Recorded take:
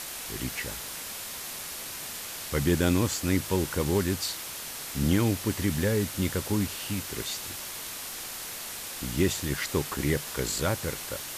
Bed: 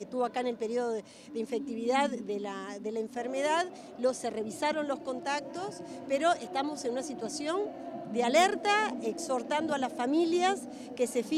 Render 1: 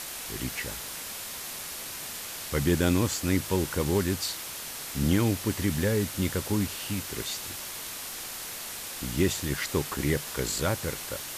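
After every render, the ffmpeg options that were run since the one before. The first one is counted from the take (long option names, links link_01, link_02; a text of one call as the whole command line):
ffmpeg -i in.wav -af anull out.wav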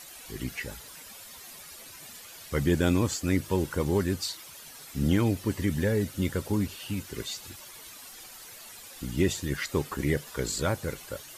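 ffmpeg -i in.wav -af "afftdn=noise_reduction=12:noise_floor=-38" out.wav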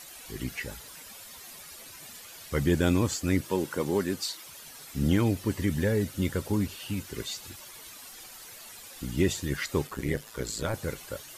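ffmpeg -i in.wav -filter_complex "[0:a]asettb=1/sr,asplit=3[link_01][link_02][link_03];[link_01]atrim=end=3.414[link_04];[link_02]atrim=start=3.41:end=4.45,asetpts=PTS-STARTPTS,afade=type=in:duration=0.004:curve=qsin,afade=type=out:start_time=1.036:duration=0.004:curve=qsin,highpass=180[link_05];[link_03]atrim=start=4.446[link_06];[link_04][link_05]acrossfade=duration=0.004:curve1=hsin:curve2=qsin[link_07];[link_07][link_06]acrossfade=duration=0.004:curve1=qsin:curve2=hsin,asettb=1/sr,asplit=3[link_08][link_09][link_10];[link_08]atrim=end=9.874[link_11];[link_09]atrim=start=9.87:end=10.74,asetpts=PTS-STARTPTS,afade=type=in:duration=0.004:curve=qsin,afade=type=out:start_time=0.866:duration=0.004:curve=qsin,tremolo=f=110:d=0.667[link_12];[link_10]atrim=start=10.736[link_13];[link_11][link_12]acrossfade=duration=0.004:curve1=hsin:curve2=qsin[link_14];[link_14][link_13]acrossfade=duration=0.004:curve1=qsin:curve2=hsin" out.wav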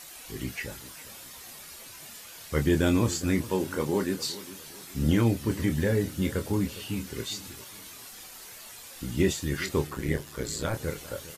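ffmpeg -i in.wav -filter_complex "[0:a]asplit=2[link_01][link_02];[link_02]adelay=26,volume=-7dB[link_03];[link_01][link_03]amix=inputs=2:normalize=0,asplit=2[link_04][link_05];[link_05]adelay=406,lowpass=frequency=2000:poles=1,volume=-16.5dB,asplit=2[link_06][link_07];[link_07]adelay=406,lowpass=frequency=2000:poles=1,volume=0.39,asplit=2[link_08][link_09];[link_09]adelay=406,lowpass=frequency=2000:poles=1,volume=0.39[link_10];[link_04][link_06][link_08][link_10]amix=inputs=4:normalize=0" out.wav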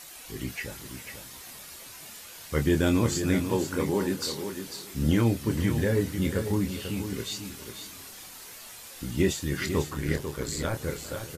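ffmpeg -i in.wav -af "aecho=1:1:495:0.376" out.wav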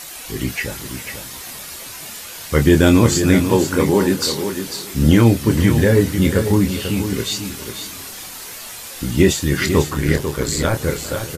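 ffmpeg -i in.wav -af "volume=11.5dB,alimiter=limit=-2dB:level=0:latency=1" out.wav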